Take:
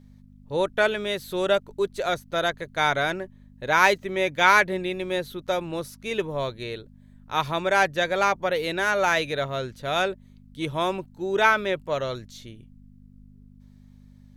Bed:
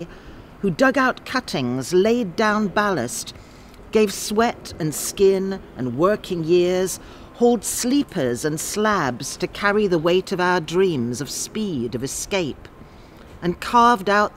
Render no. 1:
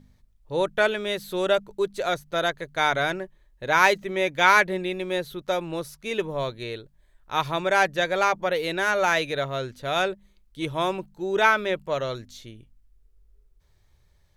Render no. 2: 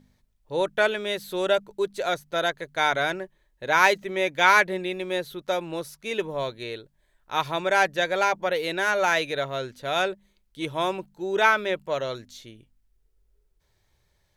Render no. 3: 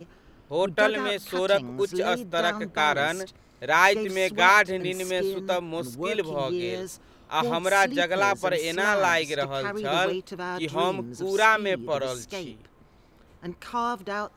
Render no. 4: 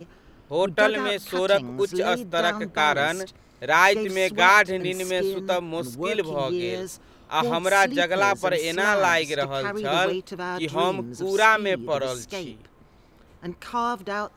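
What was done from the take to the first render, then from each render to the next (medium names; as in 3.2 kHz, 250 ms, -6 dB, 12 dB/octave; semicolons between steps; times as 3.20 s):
de-hum 50 Hz, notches 5
bass shelf 130 Hz -9.5 dB; band-stop 1.2 kHz, Q 16
add bed -13.5 dB
trim +2 dB; peak limiter -3 dBFS, peak gain reduction 1 dB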